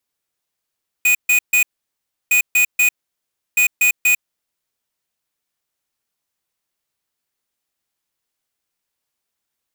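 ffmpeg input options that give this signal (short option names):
-f lavfi -i "aevalsrc='0.211*(2*lt(mod(2480*t,1),0.5)-1)*clip(min(mod(mod(t,1.26),0.24),0.1-mod(mod(t,1.26),0.24))/0.005,0,1)*lt(mod(t,1.26),0.72)':d=3.78:s=44100"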